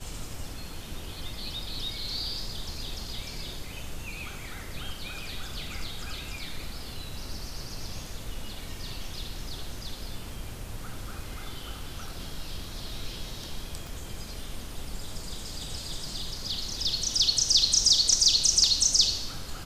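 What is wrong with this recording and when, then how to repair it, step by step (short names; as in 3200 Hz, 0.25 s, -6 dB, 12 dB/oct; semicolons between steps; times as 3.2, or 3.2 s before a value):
13.87 pop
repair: de-click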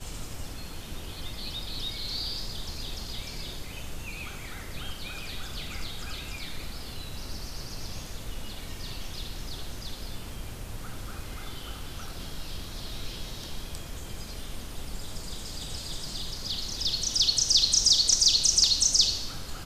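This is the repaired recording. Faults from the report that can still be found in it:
13.87 pop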